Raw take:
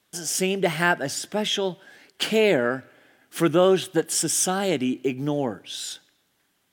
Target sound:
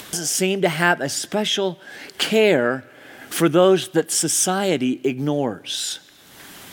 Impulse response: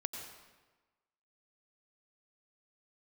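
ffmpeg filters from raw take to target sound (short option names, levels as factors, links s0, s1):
-af "acompressor=mode=upward:threshold=0.0708:ratio=2.5,volume=1.5"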